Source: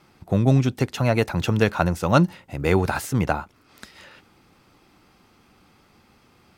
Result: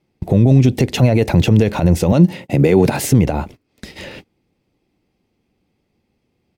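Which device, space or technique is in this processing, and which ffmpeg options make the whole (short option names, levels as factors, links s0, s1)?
mastering chain: -filter_complex "[0:a]asettb=1/sr,asplit=3[s0][s1][s2];[s0]atrim=end=2.124[s3];[s1]atrim=start=2.12:end=3.04,asetpts=PTS-STARTPTS,afade=t=in:d=0.004:c=qsin,afade=t=out:st=0.916:d=0.004:c=qsin,highpass=f=120:w=0.5412,highpass=f=120:w=1.3066[s4];[s2]atrim=start=3.036[s5];[s3][s4]acrossfade=d=0.004:c1=hsin:c2=qsin[s6];[s6][s5]acrossfade=d=0.004:c1=qsin:c2=hsin,equalizer=f=2300:t=o:w=1.3:g=2.5,acompressor=threshold=0.0794:ratio=2.5,alimiter=level_in=10.6:limit=0.891:release=50:level=0:latency=1,agate=range=0.0398:threshold=0.0447:ratio=16:detection=peak,firequalizer=gain_entry='entry(480,0);entry(1300,-18);entry(2000,-8)':delay=0.05:min_phase=1,volume=0.891"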